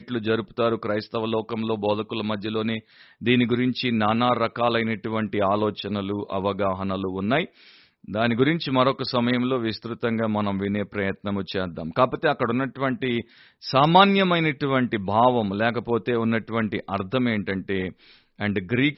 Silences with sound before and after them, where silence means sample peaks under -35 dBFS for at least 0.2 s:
2.79–3.21 s
7.45–8.05 s
13.22–13.63 s
17.92–18.40 s

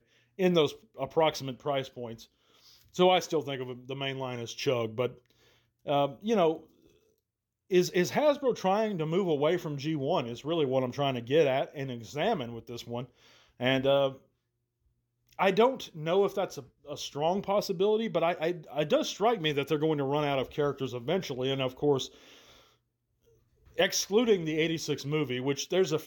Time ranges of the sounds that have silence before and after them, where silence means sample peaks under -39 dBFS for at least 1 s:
7.71–14.13 s
15.39–22.07 s

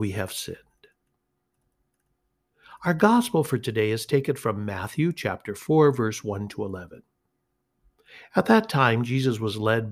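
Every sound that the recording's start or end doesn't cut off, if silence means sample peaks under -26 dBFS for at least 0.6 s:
2.85–6.78 s

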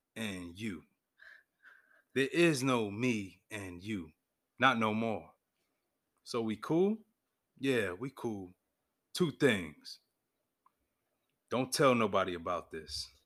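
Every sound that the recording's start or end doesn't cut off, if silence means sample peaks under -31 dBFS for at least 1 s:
2.16–5.18 s
6.31–9.63 s

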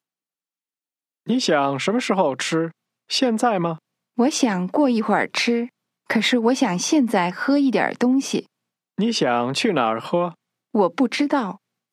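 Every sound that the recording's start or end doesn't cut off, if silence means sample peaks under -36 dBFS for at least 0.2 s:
1.27–2.70 s
3.10–3.76 s
4.18–5.67 s
6.10–8.41 s
8.98–10.32 s
10.74–11.56 s

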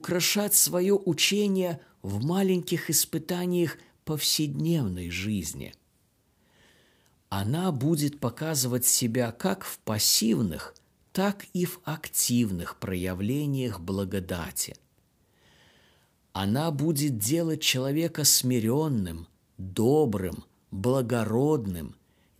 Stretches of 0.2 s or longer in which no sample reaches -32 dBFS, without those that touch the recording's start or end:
1.75–2.04 s
3.72–4.07 s
5.66–7.32 s
10.67–11.15 s
14.75–16.35 s
19.21–19.60 s
20.39–20.73 s

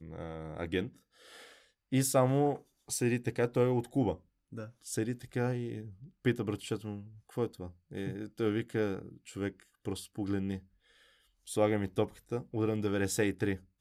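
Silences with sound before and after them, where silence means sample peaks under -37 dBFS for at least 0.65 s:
0.87–1.92 s
10.57–11.49 s

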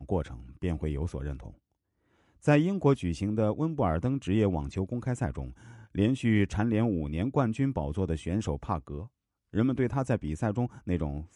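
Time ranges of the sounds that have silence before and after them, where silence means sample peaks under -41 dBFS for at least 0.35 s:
2.45–9.06 s

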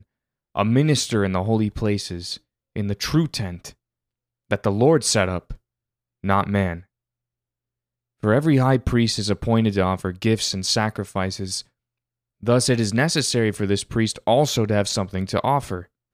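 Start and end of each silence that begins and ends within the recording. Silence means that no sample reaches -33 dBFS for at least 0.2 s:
2.36–2.76 s
3.69–4.51 s
5.54–6.24 s
6.80–8.23 s
11.61–12.43 s

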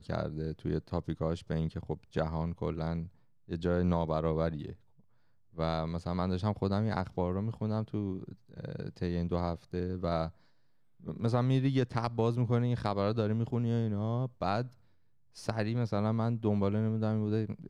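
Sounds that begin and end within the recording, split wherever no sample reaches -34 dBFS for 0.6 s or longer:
5.58–10.28 s
11.08–14.62 s

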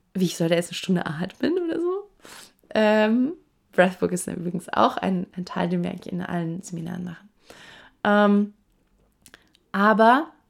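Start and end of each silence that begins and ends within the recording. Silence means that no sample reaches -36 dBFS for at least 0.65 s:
8.49–9.26 s

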